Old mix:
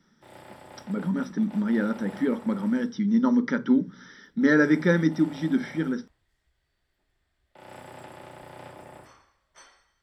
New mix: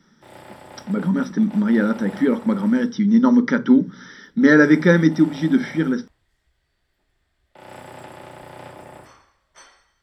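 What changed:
speech +7.0 dB; background +5.0 dB

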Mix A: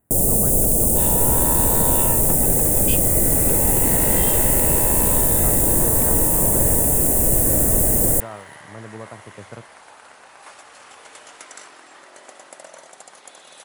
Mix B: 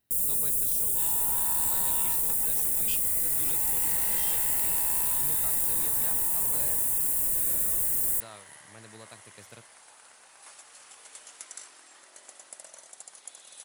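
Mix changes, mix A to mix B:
speech: remove low-pass 1.4 kHz 12 dB/octave; first sound -11.0 dB; master: add pre-emphasis filter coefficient 0.8

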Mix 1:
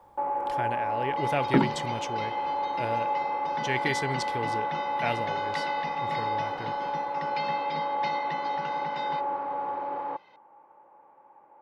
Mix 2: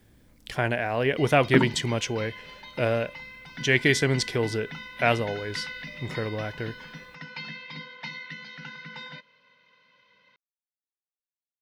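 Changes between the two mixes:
speech +8.5 dB; first sound: muted

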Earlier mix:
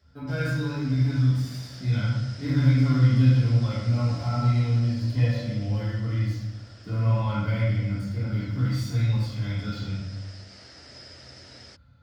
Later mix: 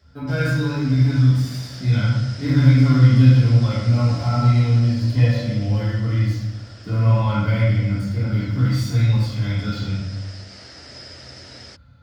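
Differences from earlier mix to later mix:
speech +6.5 dB; background +6.5 dB

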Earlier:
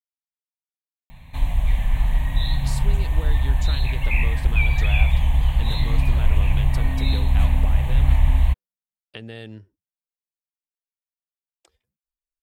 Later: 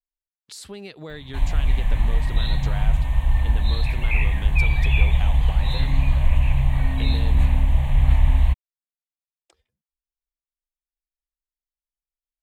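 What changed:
speech: entry -2.15 s; master: add treble shelf 12 kHz -10.5 dB

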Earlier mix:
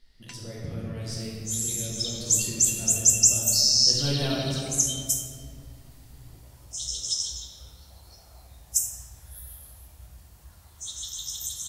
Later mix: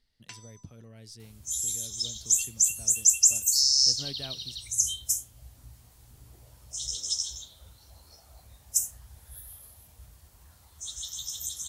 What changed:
speech -4.5 dB; reverb: off

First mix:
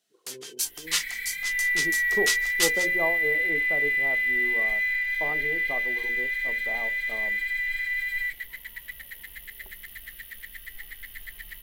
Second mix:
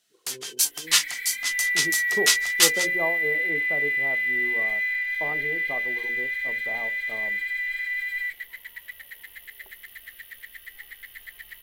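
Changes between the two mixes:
first sound +6.5 dB; second sound: add tone controls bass -14 dB, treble -3 dB; master: add peaking EQ 98 Hz +14 dB 0.4 oct

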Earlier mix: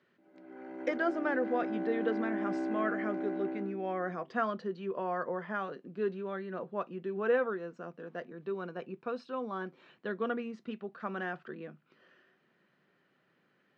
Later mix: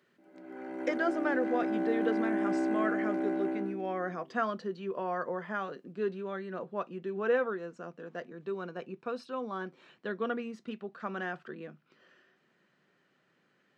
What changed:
background +4.0 dB; master: remove distance through air 110 m

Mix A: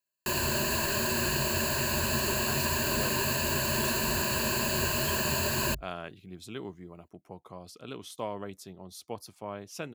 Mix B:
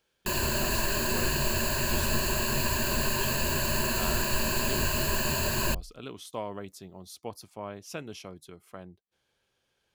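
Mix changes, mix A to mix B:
speech: entry -1.85 s; master: remove high-pass 71 Hz

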